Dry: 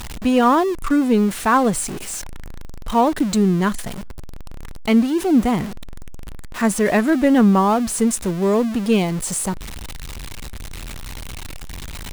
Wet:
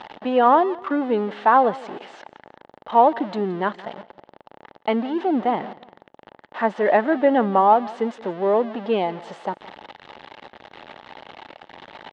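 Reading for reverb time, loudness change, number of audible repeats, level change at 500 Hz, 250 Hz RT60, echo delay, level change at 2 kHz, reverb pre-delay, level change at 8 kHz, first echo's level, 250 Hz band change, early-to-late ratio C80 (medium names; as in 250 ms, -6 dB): no reverb, -2.5 dB, 2, +0.5 dB, no reverb, 172 ms, -3.0 dB, no reverb, under -30 dB, -20.0 dB, -8.5 dB, no reverb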